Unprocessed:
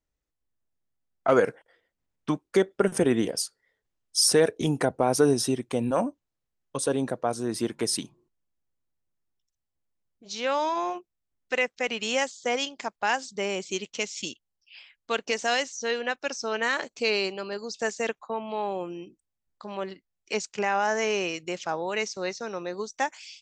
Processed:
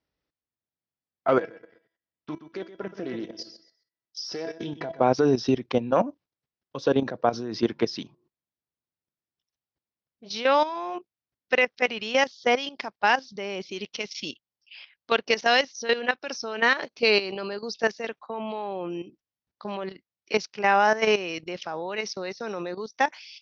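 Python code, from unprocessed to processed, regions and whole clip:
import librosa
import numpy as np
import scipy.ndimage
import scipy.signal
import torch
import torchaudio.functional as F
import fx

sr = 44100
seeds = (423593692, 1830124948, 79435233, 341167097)

y = fx.chain(x, sr, fx.comb_fb(f0_hz=330.0, decay_s=0.24, harmonics='all', damping=0.0, mix_pct=80),
    fx.echo_feedback(ms=124, feedback_pct=28, wet_db=-11),
    fx.doppler_dist(depth_ms=0.13), at=(1.38, 5.01))
y = scipy.signal.sosfilt(scipy.signal.butter(2, 94.0, 'highpass', fs=sr, output='sos'), y)
y = fx.level_steps(y, sr, step_db=13)
y = scipy.signal.sosfilt(scipy.signal.butter(12, 5700.0, 'lowpass', fs=sr, output='sos'), y)
y = y * 10.0 ** (7.0 / 20.0)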